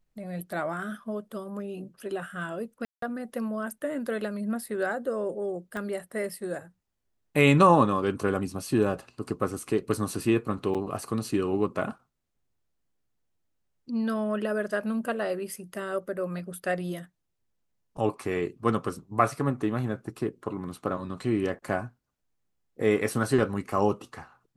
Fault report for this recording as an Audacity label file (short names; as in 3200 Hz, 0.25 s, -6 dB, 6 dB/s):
2.850000	3.020000	gap 0.173 s
5.770000	5.770000	pop -22 dBFS
10.740000	10.750000	gap 7.3 ms